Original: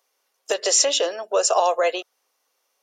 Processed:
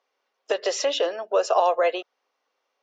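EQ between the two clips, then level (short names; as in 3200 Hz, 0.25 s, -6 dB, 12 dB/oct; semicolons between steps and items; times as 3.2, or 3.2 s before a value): air absorption 210 m; 0.0 dB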